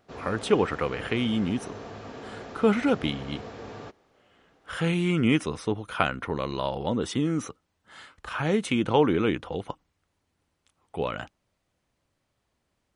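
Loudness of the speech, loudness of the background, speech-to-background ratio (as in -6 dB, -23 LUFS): -27.0 LUFS, -41.5 LUFS, 14.5 dB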